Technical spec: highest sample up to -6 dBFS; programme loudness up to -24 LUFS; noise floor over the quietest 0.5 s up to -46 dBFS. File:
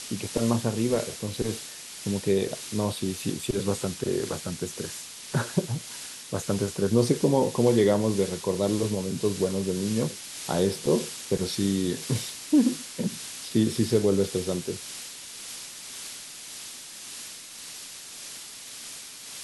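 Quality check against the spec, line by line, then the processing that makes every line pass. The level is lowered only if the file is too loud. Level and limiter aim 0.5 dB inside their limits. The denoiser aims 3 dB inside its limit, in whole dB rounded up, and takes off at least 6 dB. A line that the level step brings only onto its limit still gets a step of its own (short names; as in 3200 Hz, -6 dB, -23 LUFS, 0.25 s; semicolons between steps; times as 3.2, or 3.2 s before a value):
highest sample -8.5 dBFS: OK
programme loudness -27.5 LUFS: OK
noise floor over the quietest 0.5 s -42 dBFS: fail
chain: denoiser 7 dB, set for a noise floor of -42 dBFS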